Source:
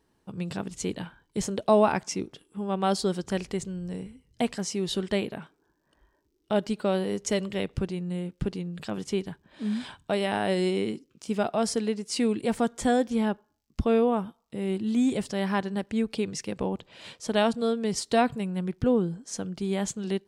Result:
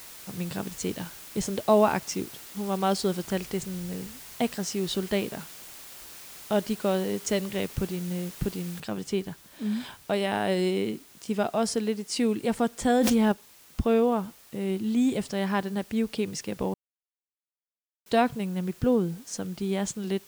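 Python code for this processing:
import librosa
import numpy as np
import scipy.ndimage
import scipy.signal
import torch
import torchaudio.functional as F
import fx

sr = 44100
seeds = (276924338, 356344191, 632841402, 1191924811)

y = fx.noise_floor_step(x, sr, seeds[0], at_s=8.8, before_db=-45, after_db=-54, tilt_db=0.0)
y = fx.env_flatten(y, sr, amount_pct=100, at=(12.9, 13.32))
y = fx.edit(y, sr, fx.silence(start_s=16.74, length_s=1.32), tone=tone)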